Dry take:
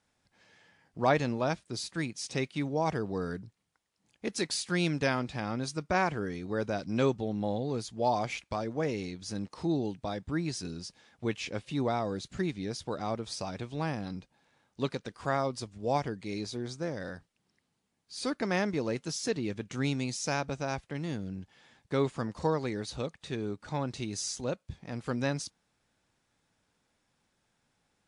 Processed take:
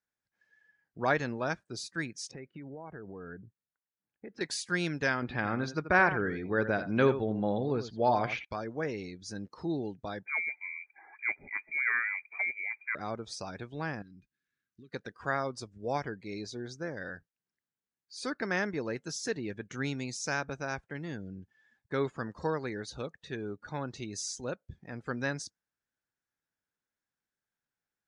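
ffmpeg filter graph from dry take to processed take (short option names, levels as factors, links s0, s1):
-filter_complex "[0:a]asettb=1/sr,asplit=3[s0][s1][s2];[s0]atrim=end=2.314[s3];[s1]atrim=start=2.31:end=4.41,asetpts=PTS-STARTPTS,afade=t=in:d=0.004:c=qsin,afade=t=out:st=2.096:d=0.004:c=qsin,lowpass=2000,acompressor=threshold=0.0158:ratio=20:attack=3.2:release=140:knee=1:detection=peak[s4];[s2]atrim=start=4.406[s5];[s3][s4]acrossfade=d=0.004:c1=hsin:c2=qsin[s6];[s6][s5]acrossfade=d=0.004:c1=qsin:c2=hsin,asettb=1/sr,asplit=3[s7][s8][s9];[s7]atrim=end=5.224[s10];[s8]atrim=start=5.22:end=8.45,asetpts=PTS-STARTPTS,afade=t=in:d=0.004:c=qsin,afade=t=out:st=3.226:d=0.004:c=qsin,lowpass=3600,acontrast=26,aecho=1:1:83:0.266,atrim=end_sample=142443[s11];[s9]atrim=start=8.446[s12];[s10][s11]acrossfade=d=0.004:c1=hsin:c2=qsin[s13];[s13][s12]acrossfade=d=0.004:c1=qsin:c2=hsin,asettb=1/sr,asplit=3[s14][s15][s16];[s14]atrim=end=10.264[s17];[s15]atrim=start=10.26:end=12.95,asetpts=PTS-STARTPTS,afade=t=in:d=0.004:c=qsin,afade=t=out:st=2.686:d=0.004:c=qsin,bandreject=f=680:w=14,acompressor=mode=upward:threshold=0.0141:ratio=2.5:attack=3.2:release=140:knee=2.83:detection=peak,lowpass=f=2100:t=q:w=0.5098,lowpass=f=2100:t=q:w=0.6013,lowpass=f=2100:t=q:w=0.9,lowpass=f=2100:t=q:w=2.563,afreqshift=-2500[s18];[s16]atrim=start=12.946[s19];[s17][s18]acrossfade=d=0.004:c1=hsin:c2=qsin[s20];[s20][s19]acrossfade=d=0.004:c1=qsin:c2=hsin,asettb=1/sr,asplit=3[s21][s22][s23];[s21]atrim=end=14.024[s24];[s22]atrim=start=14.02:end=14.93,asetpts=PTS-STARTPTS,afade=t=in:d=0.004:c=qsin,afade=t=out:st=0.906:d=0.004:c=qsin,acompressor=threshold=0.00562:ratio=6:attack=3.2:release=140:knee=1:detection=peak,asuperstop=centerf=730:order=4:qfactor=0.7[s25];[s23]atrim=start=14.926[s26];[s24][s25]acrossfade=d=0.004:c1=hsin:c2=qsin[s27];[s27][s26]acrossfade=d=0.004:c1=qsin:c2=hsin,afftdn=nr=17:nf=-51,equalizer=f=400:t=o:w=0.67:g=3,equalizer=f=1600:t=o:w=0.67:g=10,equalizer=f=6300:t=o:w=0.67:g=4,volume=0.562"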